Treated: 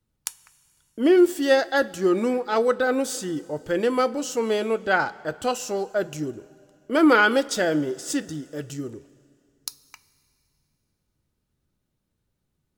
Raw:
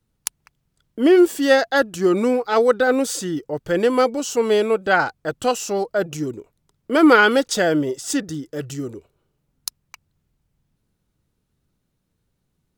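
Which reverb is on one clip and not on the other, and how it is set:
coupled-rooms reverb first 0.21 s, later 2.6 s, from −18 dB, DRR 11.5 dB
level −4.5 dB

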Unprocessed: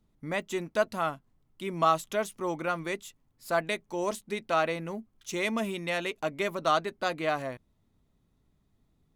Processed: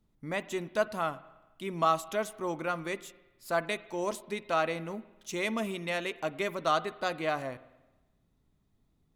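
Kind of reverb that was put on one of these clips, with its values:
spring reverb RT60 1.1 s, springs 47/51 ms, chirp 45 ms, DRR 16.5 dB
level −2 dB

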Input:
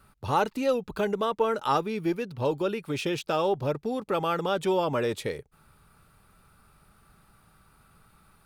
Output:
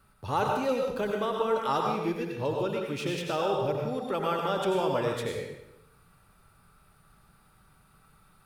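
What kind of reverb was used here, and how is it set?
dense smooth reverb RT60 0.85 s, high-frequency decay 0.85×, pre-delay 75 ms, DRR 0.5 dB
level −4 dB

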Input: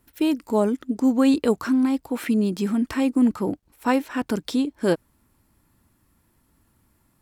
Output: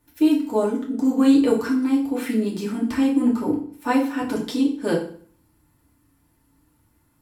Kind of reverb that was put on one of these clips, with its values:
feedback delay network reverb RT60 0.49 s, low-frequency decay 1.2×, high-frequency decay 0.9×, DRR −3.5 dB
level −5 dB

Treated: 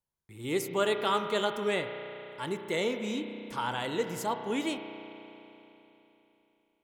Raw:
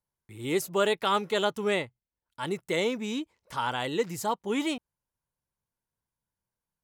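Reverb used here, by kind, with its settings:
spring reverb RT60 3.4 s, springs 33 ms, chirp 50 ms, DRR 6.5 dB
level −3 dB

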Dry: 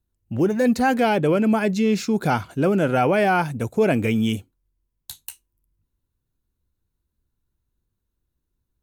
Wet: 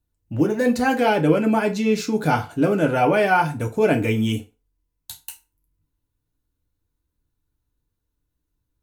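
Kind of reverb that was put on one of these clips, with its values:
feedback delay network reverb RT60 0.31 s, low-frequency decay 0.75×, high-frequency decay 0.8×, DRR 2.5 dB
level −1 dB

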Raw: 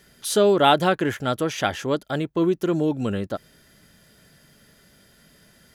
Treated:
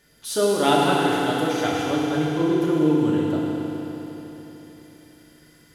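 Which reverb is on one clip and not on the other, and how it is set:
feedback delay network reverb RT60 3.8 s, high-frequency decay 1×, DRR −5.5 dB
level −6.5 dB

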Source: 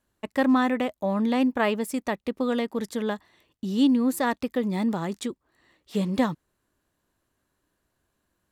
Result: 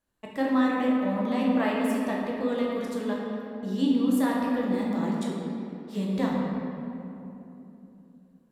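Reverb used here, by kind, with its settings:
rectangular room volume 130 cubic metres, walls hard, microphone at 0.67 metres
level −8 dB

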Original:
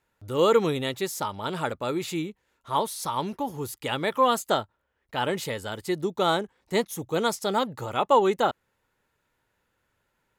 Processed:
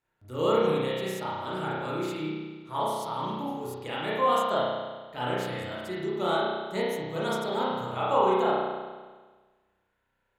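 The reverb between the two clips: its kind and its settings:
spring reverb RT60 1.4 s, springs 32 ms, chirp 25 ms, DRR −7.5 dB
level −10.5 dB

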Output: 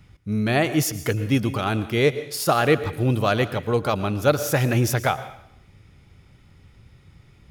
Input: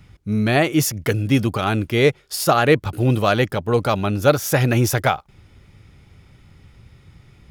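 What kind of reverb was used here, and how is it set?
dense smooth reverb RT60 0.67 s, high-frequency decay 1×, pre-delay 100 ms, DRR 13.5 dB
level −3.5 dB

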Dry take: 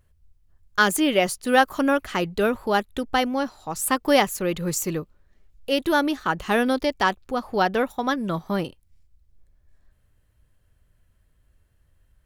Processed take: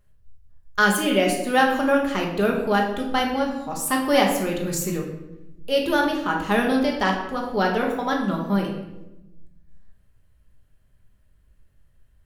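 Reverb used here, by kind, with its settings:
rectangular room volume 360 cubic metres, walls mixed, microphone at 1.3 metres
level −3 dB

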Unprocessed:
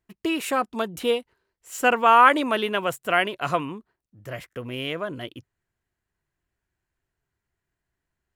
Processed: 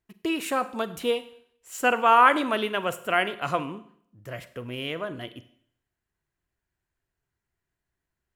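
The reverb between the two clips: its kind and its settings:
four-comb reverb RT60 0.63 s, combs from 33 ms, DRR 13 dB
level −2.5 dB

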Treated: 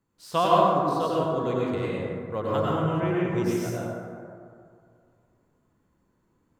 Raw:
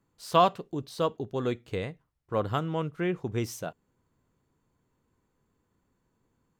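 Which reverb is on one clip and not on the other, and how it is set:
dense smooth reverb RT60 2.3 s, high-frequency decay 0.35×, pre-delay 85 ms, DRR −6.5 dB
level −3.5 dB

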